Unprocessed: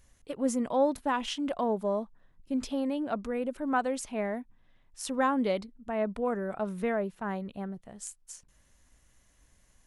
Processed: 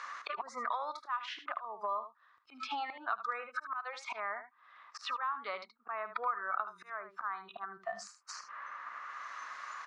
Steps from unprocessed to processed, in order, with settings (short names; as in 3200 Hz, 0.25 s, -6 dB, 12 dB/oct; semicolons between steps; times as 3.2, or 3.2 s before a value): spectral noise reduction 23 dB; compressor 8:1, threshold -43 dBFS, peak gain reduction 21 dB; LPF 4700 Hz 24 dB/oct; bell 3100 Hz -7 dB 0.44 oct; auto swell 0.483 s; resonant high-pass 1200 Hz, resonance Q 8.8; on a send: echo 75 ms -12 dB; on the sum: three-band squash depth 100%; gain +16 dB